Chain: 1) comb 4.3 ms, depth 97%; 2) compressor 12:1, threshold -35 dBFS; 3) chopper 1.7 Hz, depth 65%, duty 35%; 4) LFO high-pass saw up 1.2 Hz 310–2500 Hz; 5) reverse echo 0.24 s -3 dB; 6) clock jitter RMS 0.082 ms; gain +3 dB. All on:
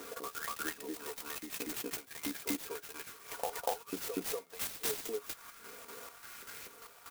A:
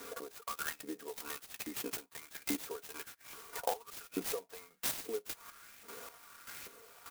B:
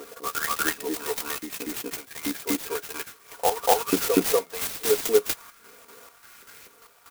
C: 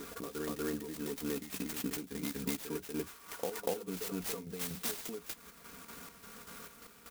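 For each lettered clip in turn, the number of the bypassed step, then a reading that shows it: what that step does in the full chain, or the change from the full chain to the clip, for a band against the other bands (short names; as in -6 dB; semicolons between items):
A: 5, crest factor change +1.5 dB; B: 2, mean gain reduction 10.5 dB; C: 4, 125 Hz band +13.0 dB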